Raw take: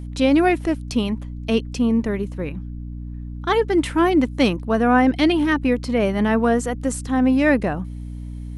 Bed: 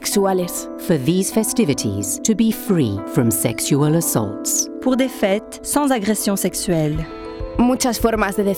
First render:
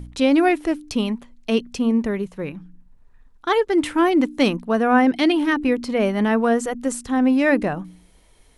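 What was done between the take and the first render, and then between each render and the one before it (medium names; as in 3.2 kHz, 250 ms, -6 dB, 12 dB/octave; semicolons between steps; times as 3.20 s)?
de-hum 60 Hz, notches 5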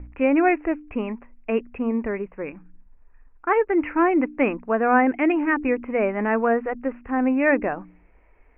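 steep low-pass 2.6 kHz 96 dB/octave; peaking EQ 150 Hz -12.5 dB 1.1 oct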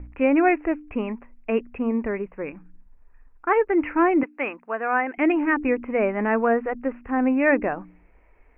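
4.23–5.18 s: high-pass 1.1 kHz 6 dB/octave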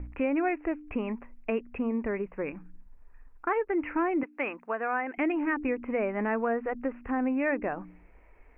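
compression 2.5:1, threshold -29 dBFS, peak gain reduction 10 dB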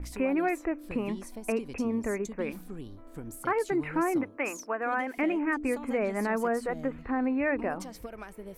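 add bed -25.5 dB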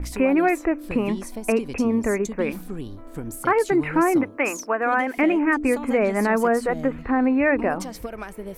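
trim +8.5 dB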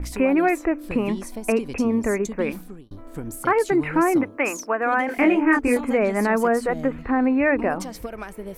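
2.51–2.91 s: fade out; 5.06–5.81 s: doubling 25 ms -2.5 dB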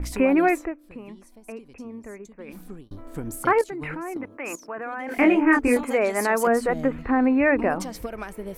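0.52–2.71 s: dip -17 dB, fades 0.24 s; 3.61–5.12 s: level held to a coarse grid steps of 16 dB; 5.83–6.47 s: tone controls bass -14 dB, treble +7 dB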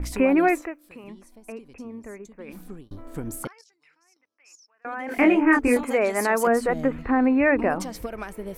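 0.62–1.04 s: tilt EQ +2.5 dB/octave; 3.47–4.85 s: band-pass filter 5.4 kHz, Q 7.5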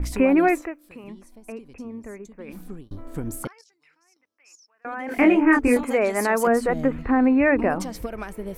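bass shelf 260 Hz +4 dB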